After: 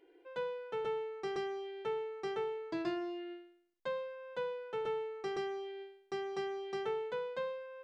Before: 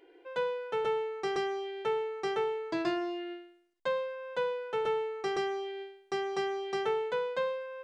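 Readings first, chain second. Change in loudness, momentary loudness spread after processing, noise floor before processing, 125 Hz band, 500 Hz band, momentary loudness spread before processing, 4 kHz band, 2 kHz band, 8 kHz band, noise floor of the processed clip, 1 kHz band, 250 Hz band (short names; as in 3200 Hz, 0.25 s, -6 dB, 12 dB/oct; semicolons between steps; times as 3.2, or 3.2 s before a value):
-6.0 dB, 6 LU, -61 dBFS, -3.5 dB, -5.5 dB, 6 LU, -7.5 dB, -7.5 dB, n/a, -67 dBFS, -7.5 dB, -4.5 dB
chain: EQ curve 270 Hz 0 dB, 670 Hz -4 dB, 4800 Hz -4 dB, 6800 Hz -6 dB; gain -3.5 dB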